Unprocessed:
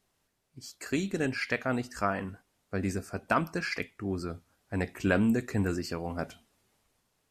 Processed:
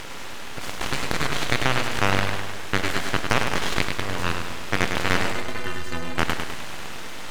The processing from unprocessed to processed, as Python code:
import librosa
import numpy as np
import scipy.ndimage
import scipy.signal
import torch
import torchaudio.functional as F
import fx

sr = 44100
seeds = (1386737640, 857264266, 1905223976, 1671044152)

p1 = fx.bin_compress(x, sr, power=0.2)
p2 = fx.tilt_shelf(p1, sr, db=-3.5, hz=680.0)
p3 = fx.cheby_harmonics(p2, sr, harmonics=(4, 7), levels_db=(-14, -24), full_scale_db=-2.0)
p4 = np.abs(p3)
p5 = fx.stiff_resonator(p4, sr, f0_hz=75.0, decay_s=0.24, stiffness=0.03, at=(5.32, 6.18))
p6 = p5 + fx.echo_feedback(p5, sr, ms=102, feedback_pct=54, wet_db=-6.0, dry=0)
y = F.gain(torch.from_numpy(p6), -1.5).numpy()